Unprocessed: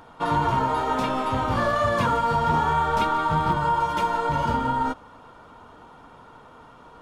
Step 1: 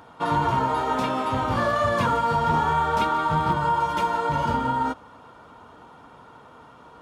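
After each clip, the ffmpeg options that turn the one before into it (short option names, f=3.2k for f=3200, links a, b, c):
-af "highpass=61"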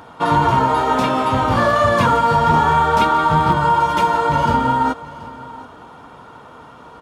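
-af "aecho=1:1:730:0.119,volume=7.5dB"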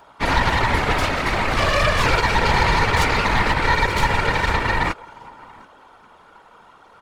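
-af "lowshelf=f=370:g=-11.5,aeval=exprs='0.708*(cos(1*acos(clip(val(0)/0.708,-1,1)))-cos(1*PI/2))+0.251*(cos(8*acos(clip(val(0)/0.708,-1,1)))-cos(8*PI/2))':c=same,afftfilt=real='hypot(re,im)*cos(2*PI*random(0))':imag='hypot(re,im)*sin(2*PI*random(1))':win_size=512:overlap=0.75"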